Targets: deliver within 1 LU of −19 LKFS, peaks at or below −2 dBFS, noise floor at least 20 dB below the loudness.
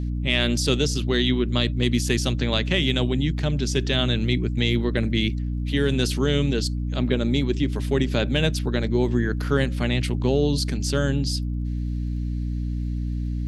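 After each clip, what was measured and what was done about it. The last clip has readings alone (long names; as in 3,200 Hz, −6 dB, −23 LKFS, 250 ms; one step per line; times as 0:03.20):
crackle rate 42 per second; mains hum 60 Hz; hum harmonics up to 300 Hz; level of the hum −23 dBFS; integrated loudness −23.5 LKFS; sample peak −6.0 dBFS; target loudness −19.0 LKFS
→ click removal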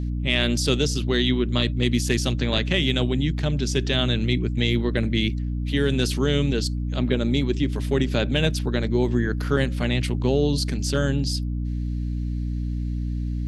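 crackle rate 0.59 per second; mains hum 60 Hz; hum harmonics up to 300 Hz; level of the hum −24 dBFS
→ hum removal 60 Hz, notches 5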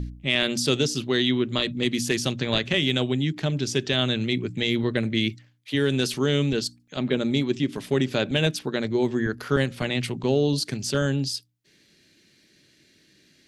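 mains hum none found; integrated loudness −24.5 LKFS; sample peak −6.5 dBFS; target loudness −19.0 LKFS
→ level +5.5 dB
brickwall limiter −2 dBFS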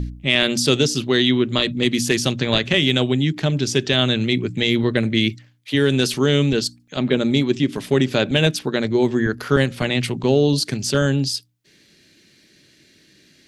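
integrated loudness −19.0 LKFS; sample peak −2.0 dBFS; background noise floor −55 dBFS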